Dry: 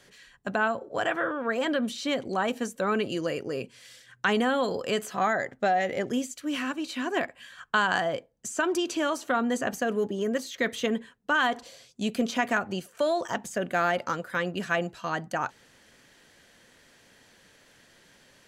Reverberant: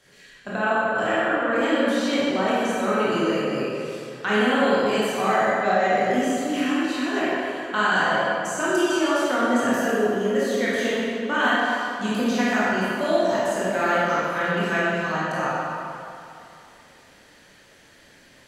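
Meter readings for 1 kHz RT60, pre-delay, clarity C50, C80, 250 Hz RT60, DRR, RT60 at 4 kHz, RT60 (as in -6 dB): 2.8 s, 18 ms, -4.5 dB, -2.0 dB, 2.6 s, -9.5 dB, 1.8 s, 2.8 s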